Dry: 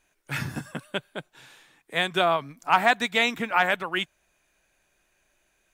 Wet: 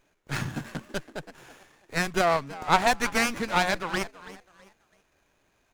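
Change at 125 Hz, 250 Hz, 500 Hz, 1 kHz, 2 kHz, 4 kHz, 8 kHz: +2.0, +1.5, −0.5, −1.5, −3.0, −3.5, +7.5 decibels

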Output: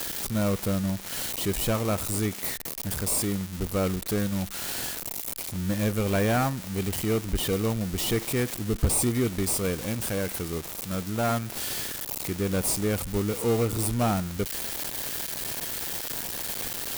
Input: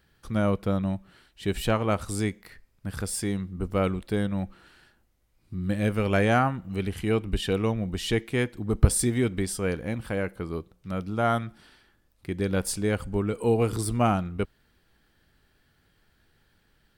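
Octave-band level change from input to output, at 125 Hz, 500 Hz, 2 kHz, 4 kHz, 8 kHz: −1.0, −1.0, −1.0, +4.5, +6.0 decibels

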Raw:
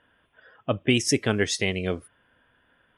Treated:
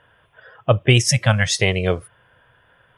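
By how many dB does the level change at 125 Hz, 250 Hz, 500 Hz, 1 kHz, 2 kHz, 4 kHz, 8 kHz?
+13.0, +1.0, +5.5, +9.0, +7.0, +6.5, +6.5 decibels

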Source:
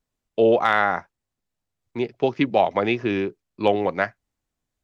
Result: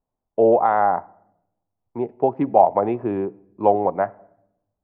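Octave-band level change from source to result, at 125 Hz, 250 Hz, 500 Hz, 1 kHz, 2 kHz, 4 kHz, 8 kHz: −1.0 dB, −0.5 dB, +2.0 dB, +5.0 dB, −11.0 dB, below −20 dB, can't be measured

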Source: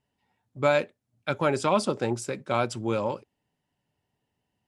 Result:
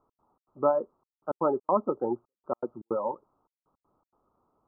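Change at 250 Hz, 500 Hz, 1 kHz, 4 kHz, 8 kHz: −4.0 dB, −2.0 dB, −2.0 dB, below −40 dB, below −40 dB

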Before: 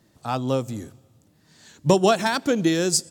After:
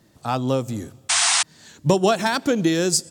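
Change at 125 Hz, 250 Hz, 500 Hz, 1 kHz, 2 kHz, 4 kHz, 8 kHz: +1.5, +1.0, +0.5, +1.5, +4.5, +6.5, +6.5 decibels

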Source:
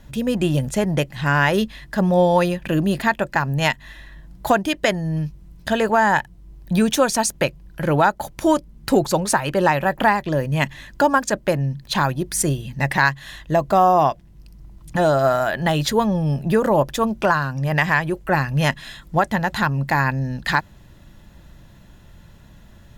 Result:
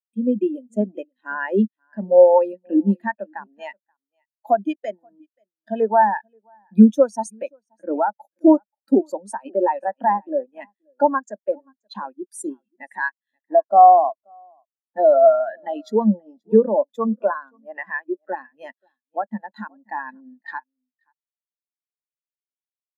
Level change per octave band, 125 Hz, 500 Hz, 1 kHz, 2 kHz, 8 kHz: below −10 dB, +2.0 dB, +0.5 dB, −10.5 dB, −16.5 dB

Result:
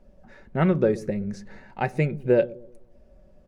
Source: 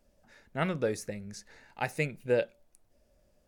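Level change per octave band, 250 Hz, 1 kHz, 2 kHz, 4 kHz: +12.0, +6.5, +2.0, −2.0 decibels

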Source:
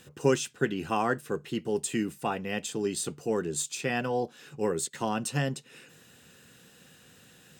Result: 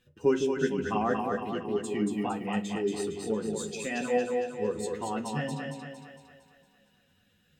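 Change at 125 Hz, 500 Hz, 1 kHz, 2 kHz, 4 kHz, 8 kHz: −3.5, +1.5, −0.5, −2.5, −4.5, −8.0 decibels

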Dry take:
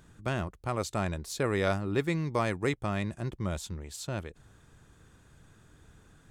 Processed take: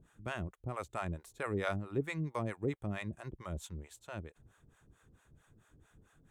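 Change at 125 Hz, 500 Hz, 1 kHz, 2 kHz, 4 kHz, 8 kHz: −7.0, −7.5, −7.0, −6.5, −11.0, −12.5 decibels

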